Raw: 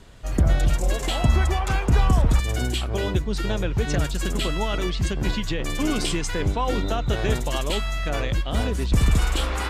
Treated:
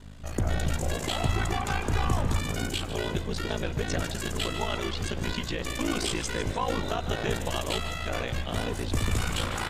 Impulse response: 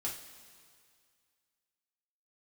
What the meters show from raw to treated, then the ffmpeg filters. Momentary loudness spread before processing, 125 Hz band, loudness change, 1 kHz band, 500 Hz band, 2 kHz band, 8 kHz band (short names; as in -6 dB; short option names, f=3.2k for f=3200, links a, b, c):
5 LU, -7.0 dB, -6.0 dB, -3.0 dB, -4.0 dB, -3.0 dB, -2.5 dB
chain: -filter_complex "[0:a]lowshelf=f=280:g=-6.5,aeval=exprs='val(0)+0.01*(sin(2*PI*50*n/s)+sin(2*PI*2*50*n/s)/2+sin(2*PI*3*50*n/s)/3+sin(2*PI*4*50*n/s)/4+sin(2*PI*5*50*n/s)/5)':c=same,aeval=exprs='val(0)*sin(2*PI*28*n/s)':c=same,volume=16.5dB,asoftclip=hard,volume=-16.5dB,asplit=2[a][b];[b]asplit=6[c][d][e][f][g][h];[c]adelay=151,afreqshift=79,volume=-12dB[i];[d]adelay=302,afreqshift=158,volume=-17.2dB[j];[e]adelay=453,afreqshift=237,volume=-22.4dB[k];[f]adelay=604,afreqshift=316,volume=-27.6dB[l];[g]adelay=755,afreqshift=395,volume=-32.8dB[m];[h]adelay=906,afreqshift=474,volume=-38dB[n];[i][j][k][l][m][n]amix=inputs=6:normalize=0[o];[a][o]amix=inputs=2:normalize=0"